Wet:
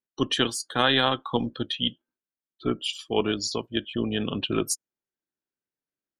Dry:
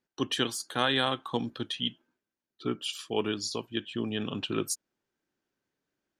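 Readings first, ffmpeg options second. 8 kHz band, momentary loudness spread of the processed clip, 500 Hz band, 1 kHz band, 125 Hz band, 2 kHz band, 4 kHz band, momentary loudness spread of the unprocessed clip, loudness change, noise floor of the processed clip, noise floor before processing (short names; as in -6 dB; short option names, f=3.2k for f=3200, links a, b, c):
+4.0 dB, 8 LU, +5.0 dB, +5.0 dB, +5.0 dB, +5.0 dB, +5.0 dB, 8 LU, +5.0 dB, under -85 dBFS, under -85 dBFS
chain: -af "afftdn=nr=18:nf=-43,tremolo=f=270:d=0.333,volume=6.5dB"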